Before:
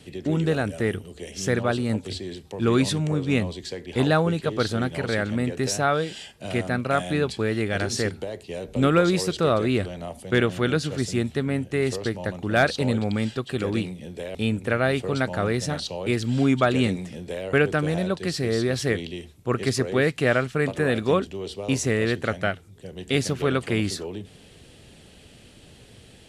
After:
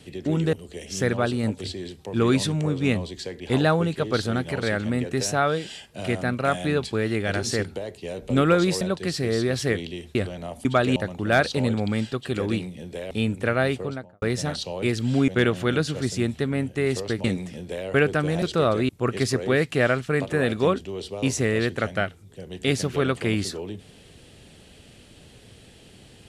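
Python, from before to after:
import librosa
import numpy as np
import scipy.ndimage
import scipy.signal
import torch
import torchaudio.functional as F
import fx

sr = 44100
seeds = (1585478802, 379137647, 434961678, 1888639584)

y = fx.studio_fade_out(x, sr, start_s=14.87, length_s=0.59)
y = fx.edit(y, sr, fx.cut(start_s=0.53, length_s=0.46),
    fx.swap(start_s=9.27, length_s=0.47, other_s=18.01, other_length_s=1.34),
    fx.swap(start_s=10.24, length_s=1.96, other_s=16.52, other_length_s=0.31), tone=tone)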